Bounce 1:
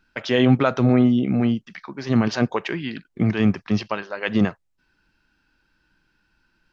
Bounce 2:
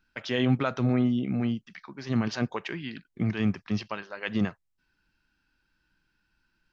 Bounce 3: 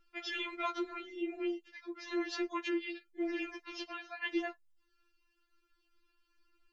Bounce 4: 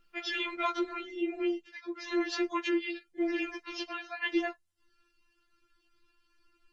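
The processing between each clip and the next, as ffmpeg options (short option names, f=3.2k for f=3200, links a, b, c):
-af "equalizer=f=520:t=o:w=2.2:g=-4,volume=-6dB"
-af "afftfilt=real='re*4*eq(mod(b,16),0)':imag='im*4*eq(mod(b,16),0)':win_size=2048:overlap=0.75"
-af "volume=5dB" -ar 48000 -c:a libopus -b:a 20k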